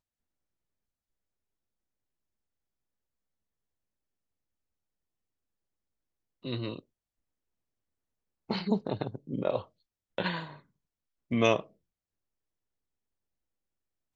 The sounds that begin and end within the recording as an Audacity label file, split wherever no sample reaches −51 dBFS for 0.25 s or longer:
6.440000	6.800000	sound
8.490000	9.650000	sound
10.180000	10.600000	sound
11.310000	11.670000	sound